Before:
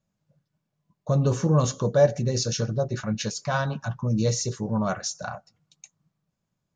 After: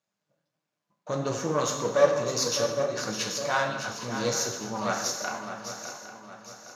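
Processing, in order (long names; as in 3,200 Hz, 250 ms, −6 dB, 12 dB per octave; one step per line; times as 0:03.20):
gain on one half-wave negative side −7 dB
meter weighting curve A
reverb whose tail is shaped and stops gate 320 ms falling, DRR 3.5 dB
flanger 1.6 Hz, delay 5.7 ms, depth 9 ms, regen +72%
feedback echo with a long and a short gap by turns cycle 810 ms, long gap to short 3 to 1, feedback 40%, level −9.5 dB
level +6.5 dB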